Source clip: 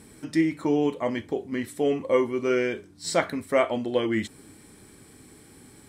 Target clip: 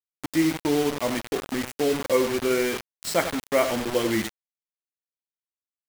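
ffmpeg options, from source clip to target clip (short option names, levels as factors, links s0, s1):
-filter_complex "[0:a]asplit=2[s0][s1];[s1]adelay=93.29,volume=0.316,highshelf=f=4000:g=-2.1[s2];[s0][s2]amix=inputs=2:normalize=0,acrusher=bits=4:mix=0:aa=0.000001"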